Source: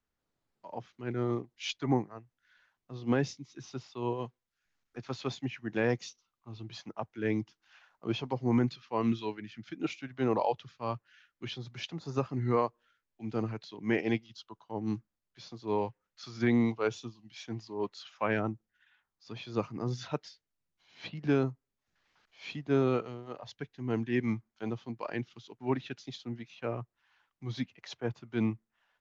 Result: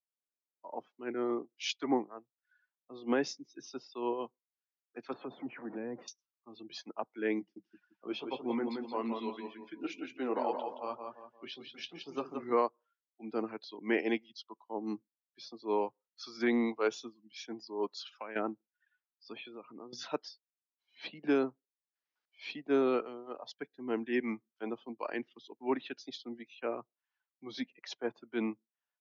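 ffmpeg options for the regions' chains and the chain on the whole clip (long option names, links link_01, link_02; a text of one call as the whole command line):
ffmpeg -i in.wav -filter_complex "[0:a]asettb=1/sr,asplit=3[link_01][link_02][link_03];[link_01]atrim=end=5.134[link_04];[link_02]atrim=start=5.13:end=6.08,asetpts=PTS-STARTPTS,afade=type=in:duration=0.004:curve=qsin,afade=type=out:start_time=0.946:duration=0.004:curve=qsin,aeval=exprs='val(0)+0.5*0.0141*sgn(val(0))':channel_layout=same,lowpass=1200,acrossover=split=220|3000[link_05][link_06][link_07];[link_06]acompressor=threshold=-39dB:ratio=10:attack=3.2:release=140:knee=2.83:detection=peak[link_08];[link_05][link_08][link_07]amix=inputs=3:normalize=0[link_09];[link_03]atrim=start=6.076[link_10];[link_04][link_09]acrossfade=duration=0.004:curve1=hsin:curve2=qsin[link_11];[link_11][link_10]acrossfade=duration=0.004:curve1=qsin:curve2=hsin,asettb=1/sr,asplit=3[link_12][link_13][link_14];[link_12]atrim=end=7.394[link_15];[link_13]atrim=start=7.39:end=12.52,asetpts=PTS-STARTPTS,afade=type=in:duration=0.004:curve=qsin,afade=type=out:start_time=5.126:duration=0.004:curve=qsin,flanger=delay=6.6:depth=5.9:regen=-58:speed=1.9:shape=triangular,aecho=1:1:172|344|516|688|860:0.562|0.214|0.0812|0.0309|0.0117,atrim=end_sample=226233[link_16];[link_14]atrim=start=12.516[link_17];[link_15][link_16]acrossfade=duration=0.004:curve1=hsin:curve2=qsin[link_18];[link_18][link_17]acrossfade=duration=0.004:curve1=qsin:curve2=hsin,asettb=1/sr,asplit=3[link_19][link_20][link_21];[link_19]atrim=end=17.884[link_22];[link_20]atrim=start=17.88:end=18.36,asetpts=PTS-STARTPTS,afade=type=in:duration=0.004:curve=qsin,afade=type=out:start_time=0.476:duration=0.004:curve=qsin,highshelf=frequency=2700:gain=3.5,acompressor=threshold=-38dB:ratio=8:attack=3.2:release=140:knee=1:detection=peak[link_23];[link_21]atrim=start=18.356[link_24];[link_22][link_23]acrossfade=duration=0.004:curve1=hsin:curve2=qsin[link_25];[link_25][link_24]acrossfade=duration=0.004:curve1=qsin:curve2=hsin,asettb=1/sr,asplit=3[link_26][link_27][link_28];[link_26]atrim=end=19.364[link_29];[link_27]atrim=start=19.36:end=19.93,asetpts=PTS-STARTPTS,afade=type=in:duration=0.004:curve=qsin,afade=type=out:start_time=0.566:duration=0.004:curve=qsin,lowpass=frequency=2900:width=0.5412,lowpass=frequency=2900:width=1.3066,aemphasis=mode=production:type=75kf,acompressor=threshold=-41dB:ratio=12:attack=3.2:release=140:knee=1:detection=peak[link_30];[link_28]atrim=start=19.926[link_31];[link_29][link_30]acrossfade=duration=0.004:curve1=hsin:curve2=qsin[link_32];[link_32][link_31]acrossfade=duration=0.004:curve1=qsin:curve2=hsin,afftdn=noise_reduction=22:noise_floor=-55,highpass=frequency=250:width=0.5412,highpass=frequency=250:width=1.3066,equalizer=frequency=5200:width=3.6:gain=4.5" out.wav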